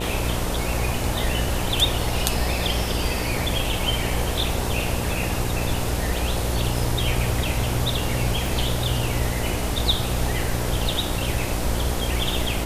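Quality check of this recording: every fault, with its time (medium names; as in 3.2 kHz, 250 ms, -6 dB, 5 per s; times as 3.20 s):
buzz 60 Hz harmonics 16 -28 dBFS
8.46 s: dropout 2.2 ms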